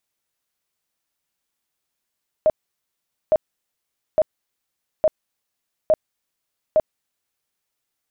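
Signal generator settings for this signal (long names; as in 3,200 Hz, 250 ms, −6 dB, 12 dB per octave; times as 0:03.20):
tone bursts 624 Hz, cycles 24, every 0.86 s, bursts 6, −11.5 dBFS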